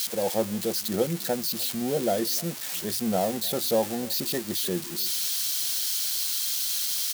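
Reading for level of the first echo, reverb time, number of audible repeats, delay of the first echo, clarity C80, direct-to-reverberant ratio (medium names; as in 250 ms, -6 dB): -22.0 dB, no reverb, 1, 301 ms, no reverb, no reverb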